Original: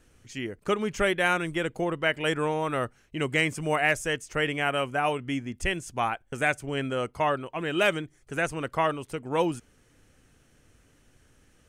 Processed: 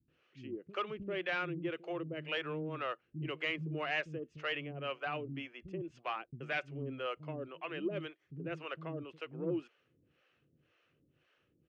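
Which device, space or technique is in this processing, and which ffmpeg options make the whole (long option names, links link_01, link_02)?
guitar amplifier with harmonic tremolo: -filter_complex "[0:a]acrossover=split=240[link_01][link_02];[link_02]adelay=80[link_03];[link_01][link_03]amix=inputs=2:normalize=0,acrossover=split=460[link_04][link_05];[link_04]aeval=exprs='val(0)*(1-1/2+1/2*cos(2*PI*1.9*n/s))':channel_layout=same[link_06];[link_05]aeval=exprs='val(0)*(1-1/2-1/2*cos(2*PI*1.9*n/s))':channel_layout=same[link_07];[link_06][link_07]amix=inputs=2:normalize=0,asoftclip=type=tanh:threshold=-22.5dB,highpass=110,equalizer=frequency=150:width_type=q:width=4:gain=7,equalizer=frequency=340:width_type=q:width=4:gain=7,equalizer=frequency=530:width_type=q:width=4:gain=4,equalizer=frequency=850:width_type=q:width=4:gain=-4,equalizer=frequency=1200:width_type=q:width=4:gain=4,equalizer=frequency=2700:width_type=q:width=4:gain=8,lowpass=frequency=4100:width=0.5412,lowpass=frequency=4100:width=1.3066,volume=-7.5dB"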